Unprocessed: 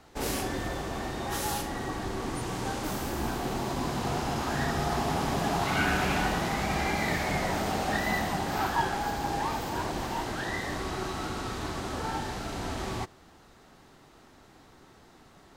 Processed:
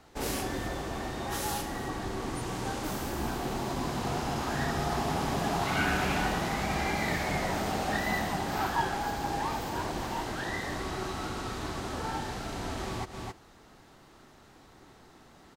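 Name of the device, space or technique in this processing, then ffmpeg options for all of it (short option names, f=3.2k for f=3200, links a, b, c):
ducked delay: -filter_complex "[0:a]asplit=3[a][b][c];[b]adelay=266,volume=-4dB[d];[c]apad=whole_len=697942[e];[d][e]sidechaincompress=threshold=-47dB:ratio=8:attack=47:release=124[f];[a][f]amix=inputs=2:normalize=0,volume=-1.5dB"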